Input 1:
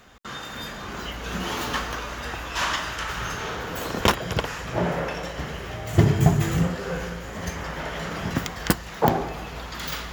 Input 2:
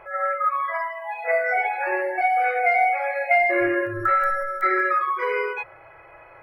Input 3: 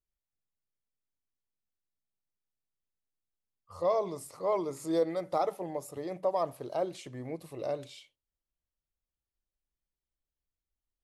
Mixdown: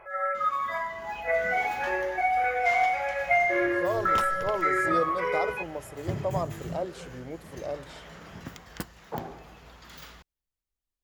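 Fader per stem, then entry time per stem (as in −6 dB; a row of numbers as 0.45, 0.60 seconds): −15.0, −4.5, −0.5 decibels; 0.10, 0.00, 0.00 seconds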